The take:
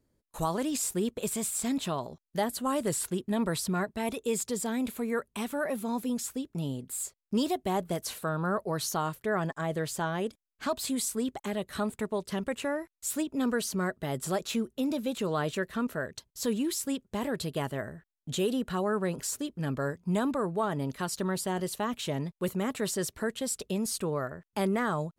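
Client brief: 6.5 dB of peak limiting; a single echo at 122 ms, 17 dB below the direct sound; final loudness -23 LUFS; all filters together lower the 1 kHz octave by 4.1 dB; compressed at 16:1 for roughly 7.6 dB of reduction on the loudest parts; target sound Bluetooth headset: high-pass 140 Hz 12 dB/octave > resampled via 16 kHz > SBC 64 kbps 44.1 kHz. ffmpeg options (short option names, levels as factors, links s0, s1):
-af "equalizer=f=1000:t=o:g=-5.5,acompressor=threshold=0.0251:ratio=16,alimiter=level_in=1.88:limit=0.0631:level=0:latency=1,volume=0.531,highpass=140,aecho=1:1:122:0.141,aresample=16000,aresample=44100,volume=7.08" -ar 44100 -c:a sbc -b:a 64k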